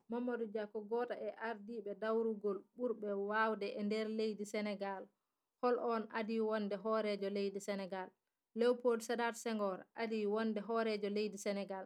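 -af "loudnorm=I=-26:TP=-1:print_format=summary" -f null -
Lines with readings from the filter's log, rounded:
Input Integrated:    -39.6 LUFS
Input True Peak:     -23.1 dBTP
Input LRA:             1.0 LU
Input Threshold:     -49.8 LUFS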